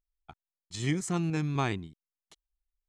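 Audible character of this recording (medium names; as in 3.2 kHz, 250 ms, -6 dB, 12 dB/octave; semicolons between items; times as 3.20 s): noise floor -94 dBFS; spectral tilt -5.5 dB/octave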